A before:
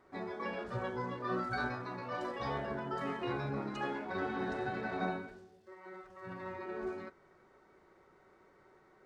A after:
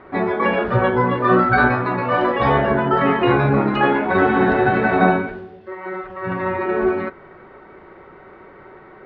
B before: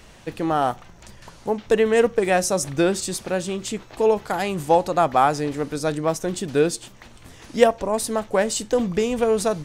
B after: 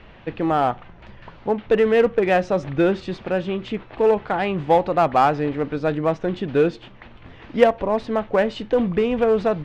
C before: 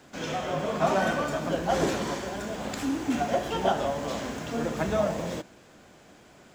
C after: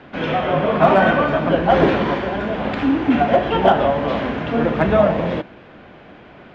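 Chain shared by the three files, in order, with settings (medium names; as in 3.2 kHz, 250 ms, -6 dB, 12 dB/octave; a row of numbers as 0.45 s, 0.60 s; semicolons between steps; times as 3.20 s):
low-pass 3.1 kHz 24 dB/octave; in parallel at -12 dB: wavefolder -17 dBFS; on the sum: peak normalisation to -2 dBFS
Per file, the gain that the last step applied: +19.0 dB, +0.5 dB, +9.5 dB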